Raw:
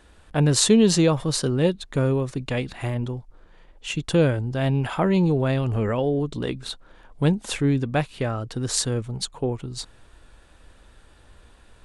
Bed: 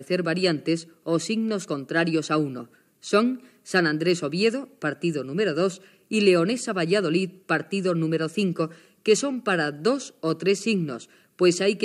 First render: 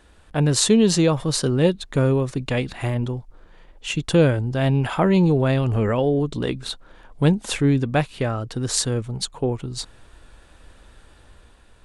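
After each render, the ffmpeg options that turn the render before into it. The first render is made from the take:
-af "dynaudnorm=f=110:g=11:m=3dB"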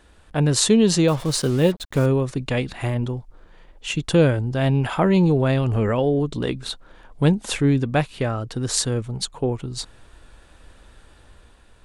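-filter_complex "[0:a]asettb=1/sr,asplit=3[a][b][c];[a]atrim=end=1.084[d];[b]atrim=start=1.08:end=2.06,asetpts=PTS-STARTPTS,afade=t=in:d=0.004:c=qsin,afade=t=out:st=0.976:d=0.004:c=qsin,acrusher=bits=5:mix=0:aa=0.5[e];[c]atrim=start=2.056[f];[d][e]acrossfade=d=0.004:c1=hsin:c2=qsin[g];[g][f]acrossfade=d=0.004:c1=qsin:c2=hsin"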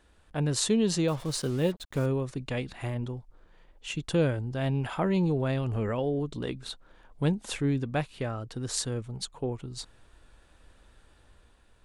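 -af "volume=-9dB"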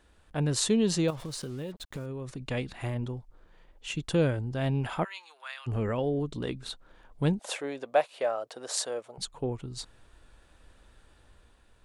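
-filter_complex "[0:a]asettb=1/sr,asplit=3[a][b][c];[a]atrim=end=1.104[d];[b]atrim=start=1.1:end=2.46,asetpts=PTS-STARTPTS,afade=t=in:d=0.004:c=qsin,afade=t=out:st=1.356:d=0.004:c=qsin,acompressor=threshold=-33dB:ratio=8:attack=3.2:release=140:knee=1:detection=peak[e];[c]atrim=start=2.456[f];[d][e]acrossfade=d=0.004:c1=hsin:c2=qsin[g];[g][f]acrossfade=d=0.004:c1=qsin:c2=hsin,asplit=3[h][i][j];[h]afade=t=out:st=5.03:d=0.02[k];[i]highpass=f=1.2k:w=0.5412,highpass=f=1.2k:w=1.3066,afade=t=in:st=5.03:d=0.02,afade=t=out:st=5.66:d=0.02[l];[j]afade=t=in:st=5.66:d=0.02[m];[k][l][m]amix=inputs=3:normalize=0,asettb=1/sr,asplit=3[n][o][p];[n]atrim=end=7.394[q];[o]atrim=start=7.39:end=9.18,asetpts=PTS-STARTPTS,afade=t=in:d=0.004:c=qsin,afade=t=out:st=1.786:d=0.004:c=qsin,highpass=f=600:t=q:w=3.3[r];[p]atrim=start=9.176[s];[q][r]acrossfade=d=0.004:c1=hsin:c2=qsin[t];[t][s]acrossfade=d=0.004:c1=qsin:c2=hsin"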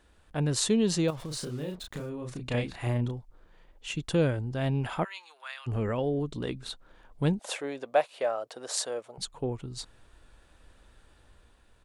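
-filter_complex "[0:a]asplit=3[a][b][c];[a]afade=t=out:st=1.3:d=0.02[d];[b]asplit=2[e][f];[f]adelay=33,volume=-3dB[g];[e][g]amix=inputs=2:normalize=0,afade=t=in:st=1.3:d=0.02,afade=t=out:st=3.1:d=0.02[h];[c]afade=t=in:st=3.1:d=0.02[i];[d][h][i]amix=inputs=3:normalize=0"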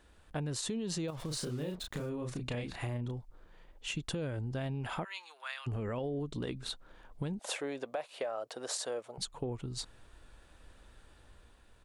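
-af "alimiter=limit=-23dB:level=0:latency=1:release=85,acompressor=threshold=-33dB:ratio=6"

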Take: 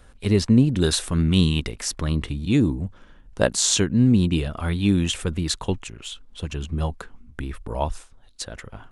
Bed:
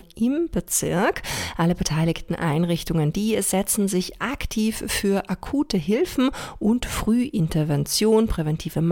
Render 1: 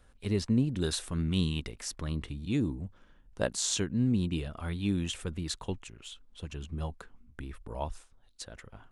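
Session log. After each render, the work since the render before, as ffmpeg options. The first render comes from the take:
-af "volume=-10.5dB"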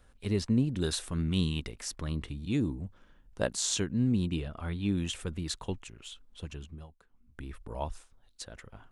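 -filter_complex "[0:a]asettb=1/sr,asplit=3[a][b][c];[a]atrim=end=4.364[d];[b]atrim=start=4.36:end=4.97,asetpts=PTS-STARTPTS,afade=t=in:d=0.004:c=qsin,afade=t=out:st=0.606:d=0.004:c=qsin,highshelf=f=5.8k:g=-9.5[e];[c]atrim=start=4.966[f];[d][e]acrossfade=d=0.004:c1=hsin:c2=qsin[g];[g][f]acrossfade=d=0.004:c1=qsin:c2=hsin,asplit=3[h][i][j];[h]atrim=end=6.87,asetpts=PTS-STARTPTS,afade=t=out:st=6.46:d=0.41:silence=0.158489[k];[i]atrim=start=6.87:end=7.08,asetpts=PTS-STARTPTS,volume=-16dB[l];[j]atrim=start=7.08,asetpts=PTS-STARTPTS,afade=t=in:d=0.41:silence=0.158489[m];[k][l][m]concat=n=3:v=0:a=1"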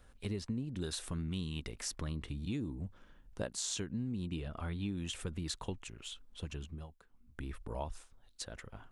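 -af "acompressor=threshold=-35dB:ratio=6"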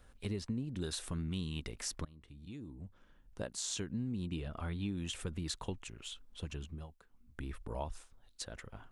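-filter_complex "[0:a]asplit=2[a][b];[a]atrim=end=2.05,asetpts=PTS-STARTPTS,afade=t=out:st=2.046:d=0.004:c=hsin:silence=0.0794328[c];[b]atrim=start=2.05,asetpts=PTS-STARTPTS,afade=t=in:d=1.86:silence=0.0794328[d];[c][d]concat=n=2:v=0:a=1"

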